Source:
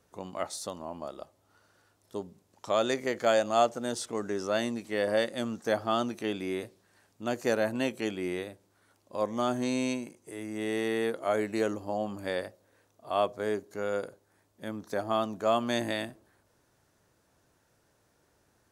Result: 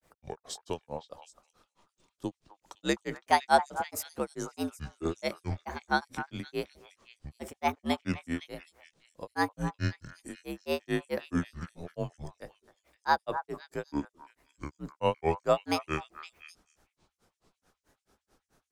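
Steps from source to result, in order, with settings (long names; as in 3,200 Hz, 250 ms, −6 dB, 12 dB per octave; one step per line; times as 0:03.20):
granular cloud 147 ms, grains 4.6 per second, pitch spread up and down by 7 semitones
frequency shifter −74 Hz
echo through a band-pass that steps 256 ms, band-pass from 1,100 Hz, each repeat 1.4 octaves, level −8 dB
level +3.5 dB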